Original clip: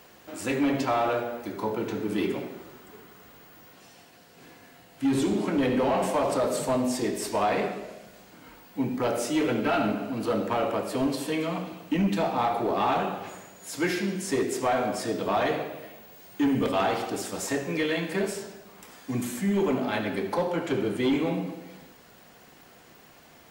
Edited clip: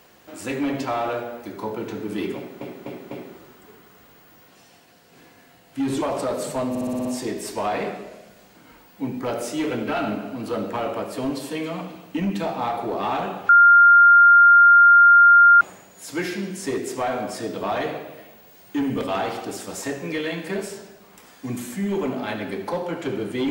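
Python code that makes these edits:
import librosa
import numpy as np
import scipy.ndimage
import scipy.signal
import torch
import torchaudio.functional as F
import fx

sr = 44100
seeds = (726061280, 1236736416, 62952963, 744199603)

y = fx.edit(x, sr, fx.repeat(start_s=2.36, length_s=0.25, count=4),
    fx.cut(start_s=5.27, length_s=0.88),
    fx.stutter(start_s=6.82, slice_s=0.06, count=7),
    fx.insert_tone(at_s=13.26, length_s=2.12, hz=1400.0, db=-8.0), tone=tone)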